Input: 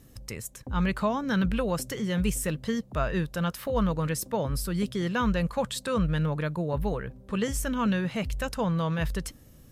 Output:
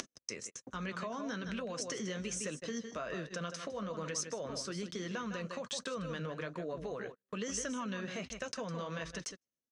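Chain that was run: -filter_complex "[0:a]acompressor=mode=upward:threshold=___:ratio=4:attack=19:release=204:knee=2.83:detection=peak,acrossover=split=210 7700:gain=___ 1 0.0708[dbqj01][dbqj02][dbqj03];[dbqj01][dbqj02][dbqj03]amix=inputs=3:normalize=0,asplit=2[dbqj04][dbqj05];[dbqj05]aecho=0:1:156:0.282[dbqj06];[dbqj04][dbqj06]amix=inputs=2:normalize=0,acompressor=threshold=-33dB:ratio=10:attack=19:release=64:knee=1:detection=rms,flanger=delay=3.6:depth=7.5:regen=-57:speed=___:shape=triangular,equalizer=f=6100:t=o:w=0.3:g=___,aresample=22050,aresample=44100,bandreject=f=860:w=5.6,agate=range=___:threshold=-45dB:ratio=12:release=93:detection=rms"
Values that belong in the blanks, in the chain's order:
-40dB, 0.0794, 1.2, 13, -42dB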